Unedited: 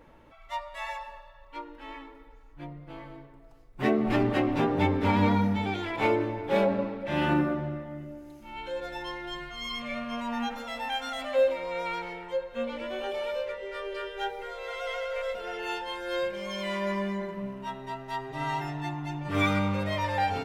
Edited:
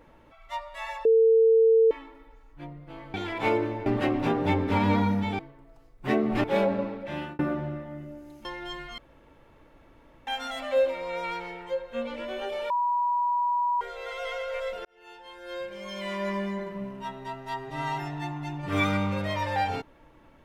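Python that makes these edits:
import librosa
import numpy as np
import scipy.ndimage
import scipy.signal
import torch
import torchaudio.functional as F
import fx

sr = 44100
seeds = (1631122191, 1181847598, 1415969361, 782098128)

y = fx.edit(x, sr, fx.bleep(start_s=1.05, length_s=0.86, hz=450.0, db=-15.5),
    fx.swap(start_s=3.14, length_s=1.05, other_s=5.72, other_length_s=0.72),
    fx.fade_out_span(start_s=6.94, length_s=0.45),
    fx.cut(start_s=8.45, length_s=0.62),
    fx.room_tone_fill(start_s=9.6, length_s=1.29),
    fx.bleep(start_s=13.32, length_s=1.11, hz=970.0, db=-22.5),
    fx.fade_in_span(start_s=15.47, length_s=1.49), tone=tone)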